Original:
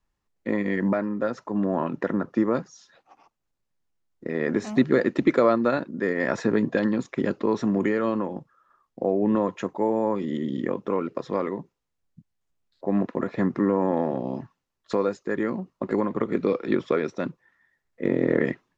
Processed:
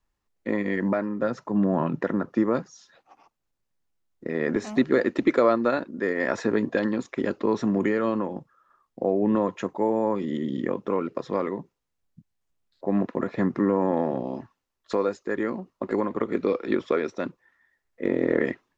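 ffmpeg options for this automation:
-af "asetnsamples=n=441:p=0,asendcmd='1.21 equalizer g 7;2.01 equalizer g -1;4.56 equalizer g -8;7.44 equalizer g -1;14.23 equalizer g -8',equalizer=f=150:t=o:w=0.81:g=-4"

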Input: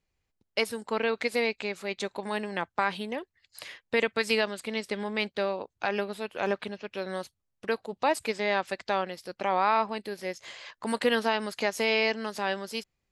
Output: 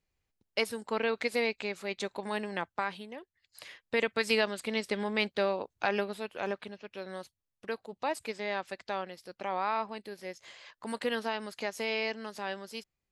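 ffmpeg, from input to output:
-af "volume=2.66,afade=t=out:st=2.54:d=0.55:silence=0.375837,afade=t=in:st=3.09:d=1.59:silence=0.281838,afade=t=out:st=5.84:d=0.74:silence=0.446684"

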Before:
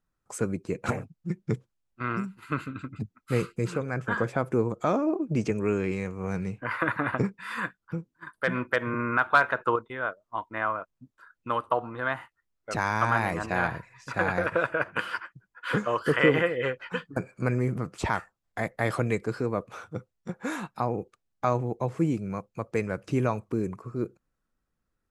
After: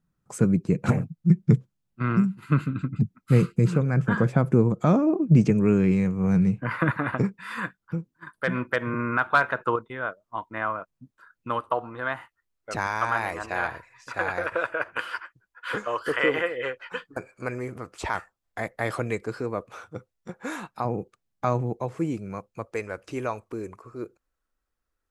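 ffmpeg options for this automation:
-af "asetnsamples=n=441:p=0,asendcmd='6.91 equalizer g 4;11.59 equalizer g -2.5;12.87 equalizer g -14;18.15 equalizer g -5;20.85 equalizer g 4;21.77 equalizer g -4;22.65 equalizer g -14.5',equalizer=f=160:t=o:w=1.3:g=14.5"

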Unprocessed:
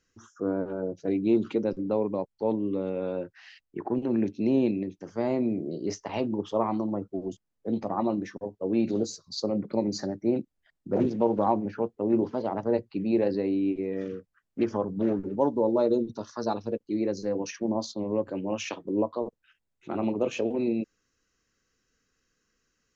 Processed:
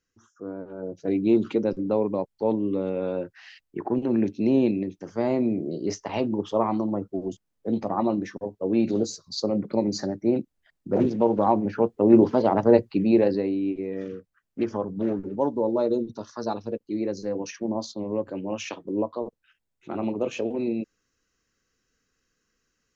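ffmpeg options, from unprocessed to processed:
-af "volume=2.82,afade=t=in:st=0.69:d=0.48:silence=0.316228,afade=t=in:st=11.46:d=0.69:silence=0.501187,afade=t=out:st=12.75:d=0.8:silence=0.354813"

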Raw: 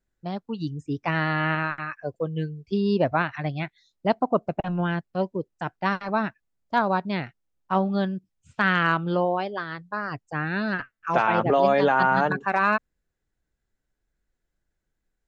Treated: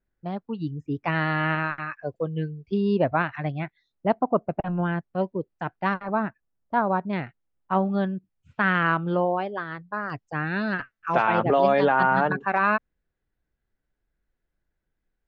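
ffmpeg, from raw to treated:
-af "asetnsamples=n=441:p=0,asendcmd='1.04 lowpass f 4000;2.36 lowpass f 2900;3.52 lowpass f 2100;5.18 lowpass f 2900;5.94 lowpass f 1600;7.13 lowpass f 2500;10.1 lowpass f 4600;11.85 lowpass f 3200',lowpass=2500"

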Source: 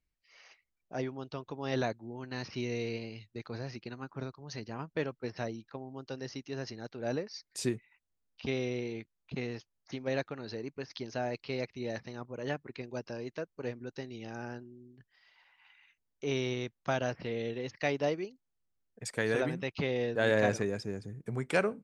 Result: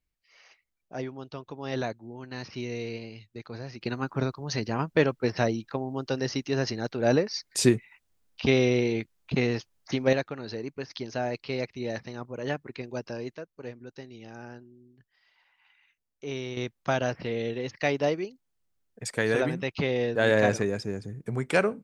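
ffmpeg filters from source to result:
-af "asetnsamples=n=441:p=0,asendcmd='3.81 volume volume 11.5dB;10.13 volume volume 4.5dB;13.35 volume volume -2dB;16.57 volume volume 5dB',volume=1.12"

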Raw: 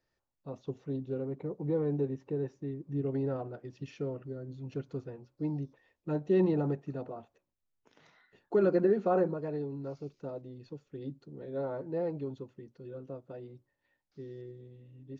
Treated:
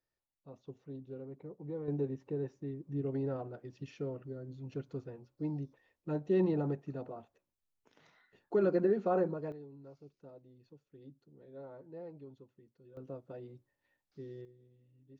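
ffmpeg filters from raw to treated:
-af "asetnsamples=n=441:p=0,asendcmd='1.88 volume volume -3dB;9.52 volume volume -13.5dB;12.97 volume volume -2dB;14.45 volume volume -13dB',volume=0.316"

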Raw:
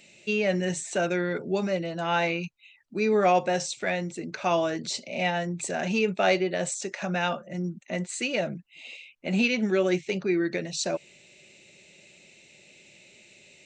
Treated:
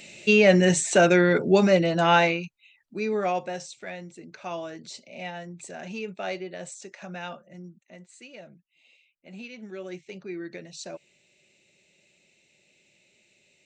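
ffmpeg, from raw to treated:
-af "volume=6.31,afade=t=out:st=2.05:d=0.4:silence=0.266073,afade=t=out:st=2.99:d=0.73:silence=0.473151,afade=t=out:st=7.34:d=0.64:silence=0.398107,afade=t=in:st=9.47:d=0.99:silence=0.421697"

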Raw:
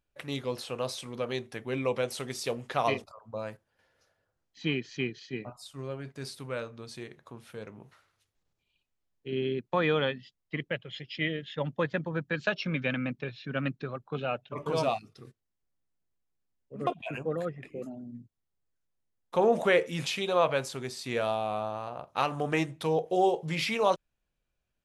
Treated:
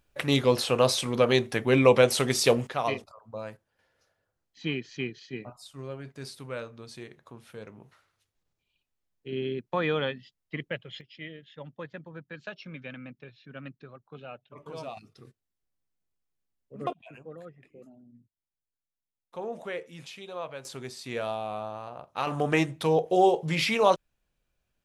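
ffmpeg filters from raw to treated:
-af "asetnsamples=n=441:p=0,asendcmd='2.67 volume volume -1dB;11.01 volume volume -11dB;14.97 volume volume -2dB;16.93 volume volume -12dB;20.65 volume volume -2.5dB;22.27 volume volume 4dB',volume=3.55"

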